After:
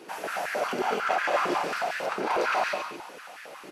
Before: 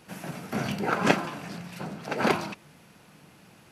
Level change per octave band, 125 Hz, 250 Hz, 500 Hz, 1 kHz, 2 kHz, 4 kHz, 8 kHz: −16.0, −7.0, +2.5, +4.5, +3.0, +0.5, +0.5 decibels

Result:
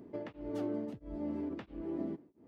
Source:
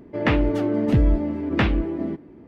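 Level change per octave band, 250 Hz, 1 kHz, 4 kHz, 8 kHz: −15.5 dB, −20.0 dB, below −25 dB, can't be measured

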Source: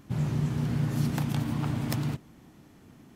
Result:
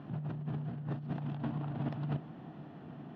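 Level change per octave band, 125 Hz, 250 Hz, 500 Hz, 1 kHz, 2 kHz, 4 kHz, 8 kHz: −9.0 dB, −8.5 dB, −5.5 dB, −6.0 dB, −11.5 dB, below −15 dB, below −35 dB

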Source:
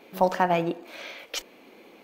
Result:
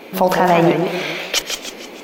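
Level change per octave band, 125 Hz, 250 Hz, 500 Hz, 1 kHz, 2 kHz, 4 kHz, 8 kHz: +12.5, +13.0, +10.5, +8.5, +12.0, +15.0, +16.0 decibels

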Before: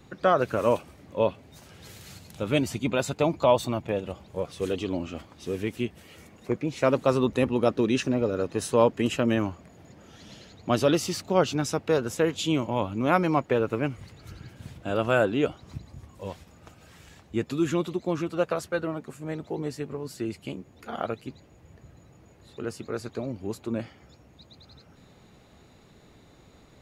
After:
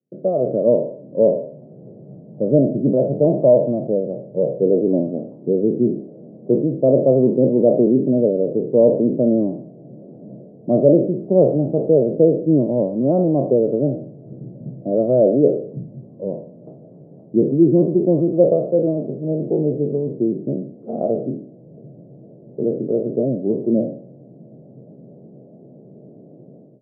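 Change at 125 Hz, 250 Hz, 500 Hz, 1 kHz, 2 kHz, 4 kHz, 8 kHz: +8.5 dB, +10.5 dB, +10.5 dB, −4.5 dB, below −35 dB, below −40 dB, below −40 dB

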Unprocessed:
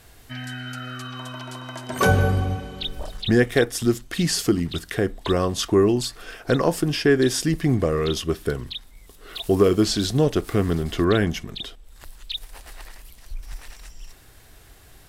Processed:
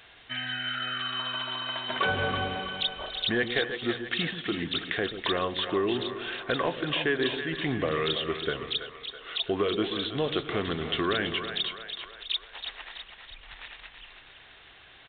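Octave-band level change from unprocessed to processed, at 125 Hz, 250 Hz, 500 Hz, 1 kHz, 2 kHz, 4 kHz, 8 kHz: −14.5 dB, −10.0 dB, −8.0 dB, −3.0 dB, −1.0 dB, +1.0 dB, below −40 dB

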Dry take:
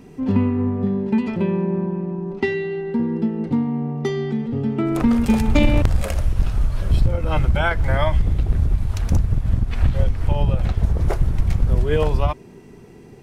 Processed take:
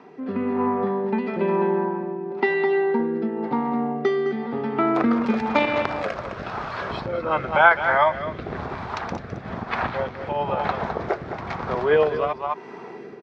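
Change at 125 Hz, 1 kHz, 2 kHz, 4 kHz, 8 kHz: −15.5 dB, +7.5 dB, +6.0 dB, −2.0 dB, can't be measured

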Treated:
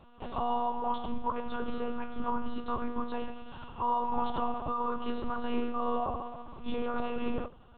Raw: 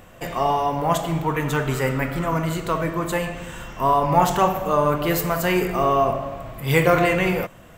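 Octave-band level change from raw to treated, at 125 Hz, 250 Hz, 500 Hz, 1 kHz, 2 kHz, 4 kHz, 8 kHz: −23.5 dB, −10.5 dB, −15.0 dB, −11.0 dB, −20.0 dB, −15.0 dB, below −40 dB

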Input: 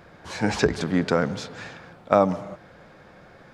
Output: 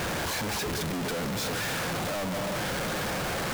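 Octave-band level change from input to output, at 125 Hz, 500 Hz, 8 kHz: −3.0, −7.5, +7.5 decibels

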